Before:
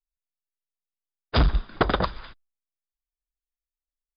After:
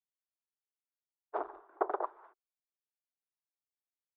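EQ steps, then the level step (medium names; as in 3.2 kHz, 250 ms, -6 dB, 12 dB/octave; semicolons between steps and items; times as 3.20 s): elliptic high-pass 380 Hz, stop band 50 dB; four-pole ladder low-pass 1.1 kHz, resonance 25%; peaking EQ 520 Hz -9.5 dB 0.35 oct; 0.0 dB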